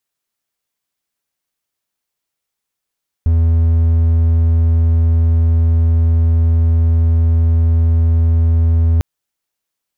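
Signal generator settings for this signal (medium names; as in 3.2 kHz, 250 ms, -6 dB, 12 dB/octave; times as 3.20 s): tone triangle 82.3 Hz -7 dBFS 5.75 s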